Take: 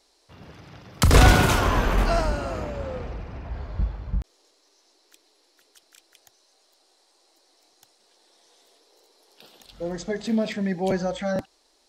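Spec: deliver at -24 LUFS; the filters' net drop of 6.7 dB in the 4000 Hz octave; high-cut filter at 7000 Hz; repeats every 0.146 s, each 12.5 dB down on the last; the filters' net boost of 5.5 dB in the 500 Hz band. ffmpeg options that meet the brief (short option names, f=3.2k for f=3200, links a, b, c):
-af "lowpass=7k,equalizer=f=500:t=o:g=7,equalizer=f=4k:t=o:g=-8.5,aecho=1:1:146|292|438:0.237|0.0569|0.0137,volume=-2dB"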